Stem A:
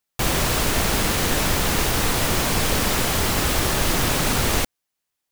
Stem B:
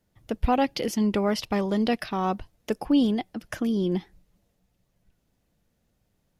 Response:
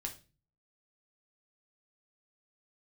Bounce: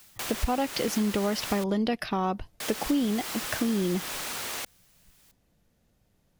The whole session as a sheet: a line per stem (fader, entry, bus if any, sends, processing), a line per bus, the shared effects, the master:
−0.5 dB, 0.00 s, muted 0:01.64–0:02.60, no send, high-pass filter 960 Hz 6 dB per octave; envelope flattener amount 50%; automatic ducking −10 dB, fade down 0.25 s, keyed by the second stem
+3.0 dB, 0.00 s, no send, no processing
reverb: not used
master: downward compressor 4 to 1, threshold −24 dBFS, peak gain reduction 9 dB

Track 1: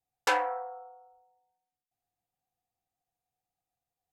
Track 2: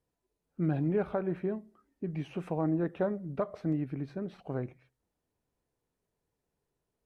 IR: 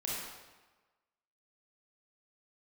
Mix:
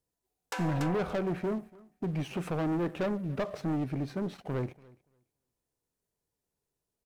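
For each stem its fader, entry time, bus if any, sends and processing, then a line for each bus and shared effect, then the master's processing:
+0.5 dB, 0.25 s, send −17 dB, echo send −11.5 dB, downward compressor 2 to 1, threshold −29 dBFS, peak gain reduction 5 dB; high-shelf EQ 8,700 Hz +5 dB; automatic ducking −12 dB, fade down 0.35 s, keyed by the second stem
−1.0 dB, 0.00 s, no send, echo send −23.5 dB, bass and treble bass 0 dB, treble +8 dB; leveller curve on the samples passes 2; soft clipping −25.5 dBFS, distortion −14 dB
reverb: on, RT60 1.2 s, pre-delay 25 ms
echo: repeating echo 287 ms, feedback 15%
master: no processing

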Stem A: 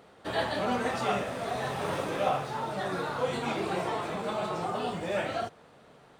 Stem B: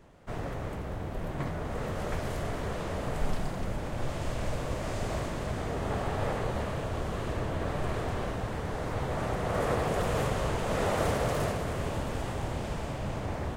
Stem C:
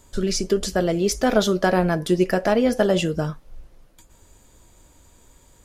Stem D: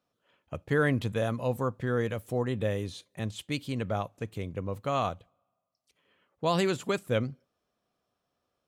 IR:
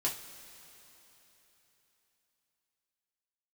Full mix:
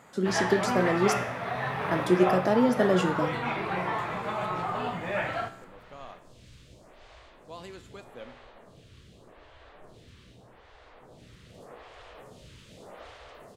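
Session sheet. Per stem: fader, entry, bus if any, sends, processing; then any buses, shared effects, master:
+1.0 dB, 0.00 s, no send, octave-band graphic EQ 125/1,000/2,000/8,000 Hz +9/+7/+10/−10 dB
−12.0 dB, 2.00 s, no send, parametric band 3,700 Hz +10.5 dB 1.6 octaves; phaser with staggered stages 0.83 Hz
−2.5 dB, 0.00 s, muted 0:01.14–0:01.91, no send, high-pass filter 190 Hz 24 dB per octave; low-shelf EQ 480 Hz +8.5 dB
−10.5 dB, 1.05 s, no send, high-pass filter 220 Hz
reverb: not used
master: tuned comb filter 61 Hz, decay 0.69 s, harmonics all, mix 60%

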